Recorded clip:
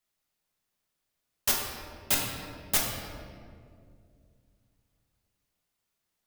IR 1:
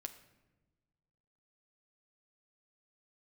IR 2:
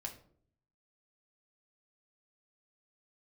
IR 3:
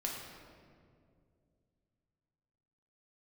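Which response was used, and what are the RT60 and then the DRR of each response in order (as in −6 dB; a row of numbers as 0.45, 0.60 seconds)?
3; 1.2, 0.55, 2.3 seconds; 7.5, 1.5, −2.5 decibels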